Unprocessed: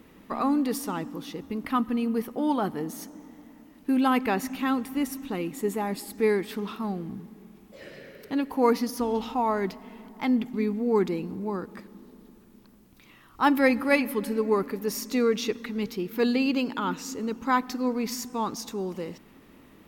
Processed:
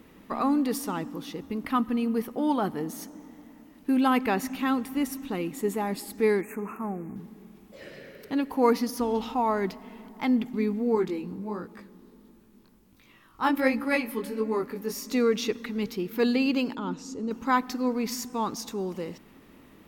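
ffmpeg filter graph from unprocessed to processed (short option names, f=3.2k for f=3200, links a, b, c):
-filter_complex "[0:a]asettb=1/sr,asplit=3[a][b][c];[a]atrim=end=6.414[d];[b]atrim=start=6.41:end=7.16,asetpts=PTS-STARTPTS,afade=t=in:d=0.004:c=qsin,afade=t=out:st=0.746:d=0.004:c=qsin,asuperstop=centerf=4100:order=20:qfactor=1.1,bass=f=250:g=-4,treble=f=4k:g=0[e];[c]atrim=start=7.156[f];[d][e]acrossfade=d=0.004:c1=hsin:c2=qsin[g];[g][f]acrossfade=d=0.004:c1=qsin:c2=hsin,asettb=1/sr,asplit=3[h][i][j];[h]atrim=end=10.954[k];[i]atrim=start=10.95:end=15.07,asetpts=PTS-STARTPTS,afade=t=in:d=0.004:c=qsin,afade=t=out:st=4.116:d=0.004:c=qsin,bandreject=f=700:w=16,flanger=delay=17.5:depth=4.9:speed=1.4[l];[j]atrim=start=15.066[m];[k][l]acrossfade=d=0.004:c1=hsin:c2=qsin[n];[n][m]acrossfade=d=0.004:c1=qsin:c2=hsin,asettb=1/sr,asplit=3[o][p][q];[o]atrim=end=16.754[r];[p]atrim=start=16.75:end=17.31,asetpts=PTS-STARTPTS,afade=t=in:d=0.004:c=qsin,afade=t=out:st=0.556:d=0.004:c=qsin,lowpass=6.5k,equalizer=f=2k:w=0.57:g=-12[s];[q]atrim=start=17.306[t];[r][s]acrossfade=d=0.004:c1=hsin:c2=qsin[u];[u][t]acrossfade=d=0.004:c1=qsin:c2=hsin"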